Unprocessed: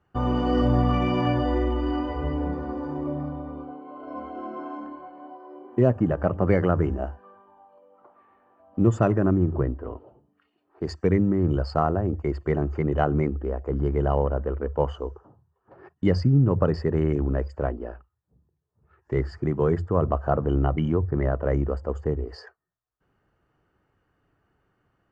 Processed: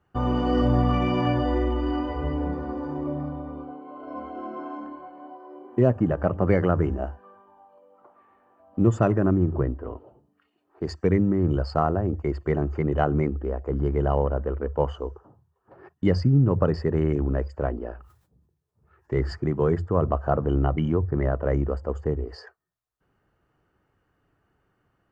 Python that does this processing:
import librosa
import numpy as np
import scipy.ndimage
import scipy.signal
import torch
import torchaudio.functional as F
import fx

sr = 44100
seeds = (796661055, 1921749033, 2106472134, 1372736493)

y = fx.sustainer(x, sr, db_per_s=96.0, at=(17.71, 19.35), fade=0.02)